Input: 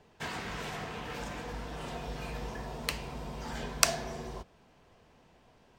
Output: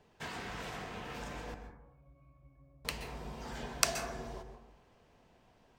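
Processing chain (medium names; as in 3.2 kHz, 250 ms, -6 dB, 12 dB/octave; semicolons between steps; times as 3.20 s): 1.54–2.85 s: pitch-class resonator C#, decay 0.65 s; plate-style reverb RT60 0.8 s, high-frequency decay 0.3×, pre-delay 115 ms, DRR 7 dB; trim -4.5 dB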